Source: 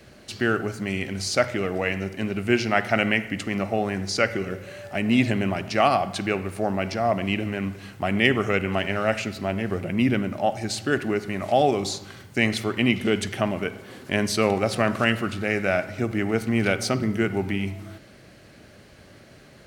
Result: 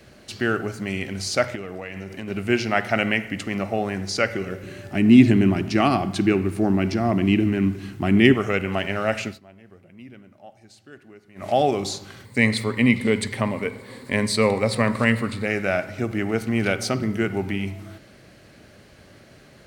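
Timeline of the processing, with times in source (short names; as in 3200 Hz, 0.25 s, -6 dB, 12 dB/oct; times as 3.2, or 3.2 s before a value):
1.55–2.28 compressor 10:1, threshold -28 dBFS
4.63–8.34 resonant low shelf 420 Hz +6 dB, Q 3
9.27–11.48 dip -22 dB, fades 0.13 s
12.25–15.46 ripple EQ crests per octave 0.97, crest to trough 10 dB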